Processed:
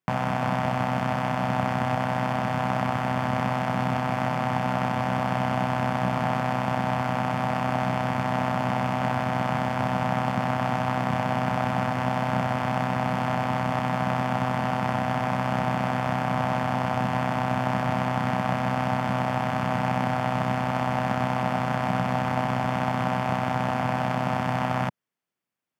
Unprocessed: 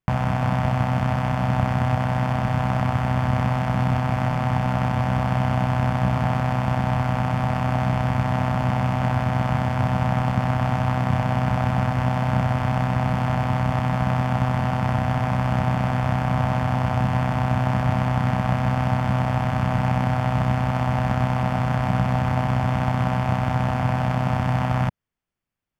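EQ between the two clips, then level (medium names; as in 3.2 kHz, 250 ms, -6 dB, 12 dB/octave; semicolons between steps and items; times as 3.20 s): high-pass 200 Hz 12 dB/octave; 0.0 dB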